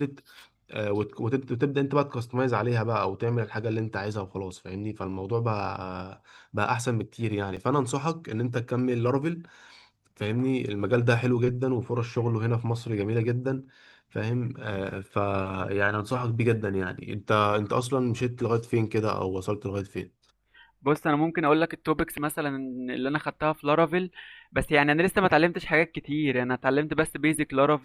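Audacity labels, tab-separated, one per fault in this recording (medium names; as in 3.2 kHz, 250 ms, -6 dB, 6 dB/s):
7.560000	7.570000	dropout 6.6 ms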